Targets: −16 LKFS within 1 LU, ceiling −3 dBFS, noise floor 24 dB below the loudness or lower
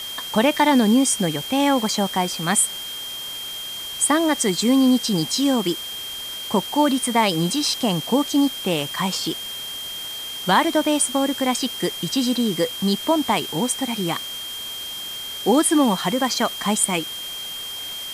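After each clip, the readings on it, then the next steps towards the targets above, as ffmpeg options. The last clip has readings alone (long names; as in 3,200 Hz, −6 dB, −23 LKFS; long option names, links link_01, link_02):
interfering tone 3,200 Hz; level of the tone −30 dBFS; background noise floor −32 dBFS; target noise floor −45 dBFS; integrated loudness −21.0 LKFS; sample peak −6.0 dBFS; target loudness −16.0 LKFS
→ -af "bandreject=frequency=3200:width=30"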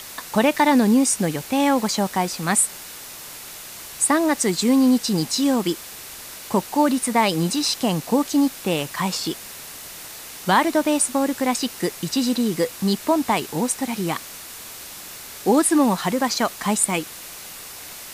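interfering tone none found; background noise floor −38 dBFS; target noise floor −45 dBFS
→ -af "afftdn=noise_reduction=7:noise_floor=-38"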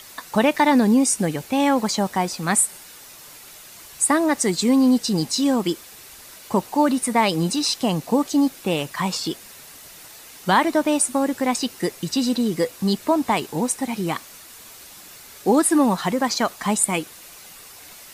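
background noise floor −43 dBFS; target noise floor −45 dBFS
→ -af "afftdn=noise_reduction=6:noise_floor=-43"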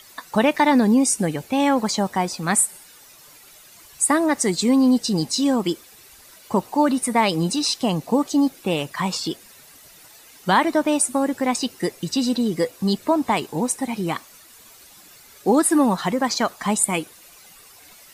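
background noise floor −48 dBFS; integrated loudness −21.0 LKFS; sample peak −6.0 dBFS; target loudness −16.0 LKFS
→ -af "volume=5dB,alimiter=limit=-3dB:level=0:latency=1"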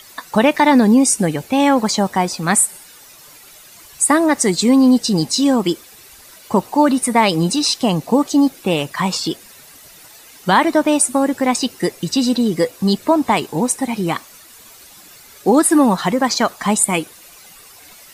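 integrated loudness −16.0 LKFS; sample peak −3.0 dBFS; background noise floor −43 dBFS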